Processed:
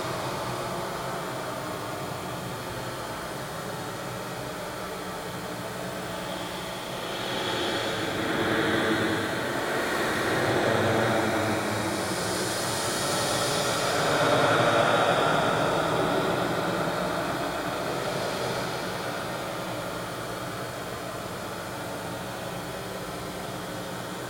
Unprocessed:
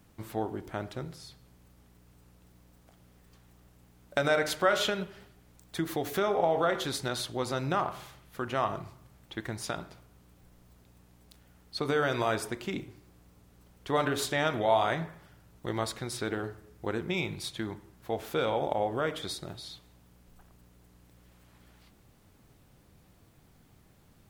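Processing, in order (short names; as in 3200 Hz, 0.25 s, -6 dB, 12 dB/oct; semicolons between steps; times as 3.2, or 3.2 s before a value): per-bin compression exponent 0.4; reverse echo 56 ms -8.5 dB; Paulstretch 18×, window 0.10 s, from 8.9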